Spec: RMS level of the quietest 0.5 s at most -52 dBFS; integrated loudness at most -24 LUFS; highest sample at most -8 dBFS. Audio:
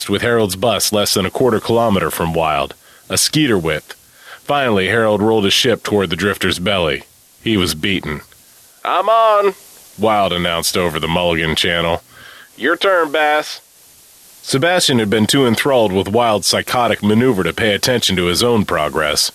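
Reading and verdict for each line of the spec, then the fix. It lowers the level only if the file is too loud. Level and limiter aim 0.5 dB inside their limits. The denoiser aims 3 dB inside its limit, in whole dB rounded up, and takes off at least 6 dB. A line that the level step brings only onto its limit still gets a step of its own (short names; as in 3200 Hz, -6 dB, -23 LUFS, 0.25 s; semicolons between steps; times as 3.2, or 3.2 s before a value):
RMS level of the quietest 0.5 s -46 dBFS: fail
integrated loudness -15.0 LUFS: fail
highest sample -3.5 dBFS: fail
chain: gain -9.5 dB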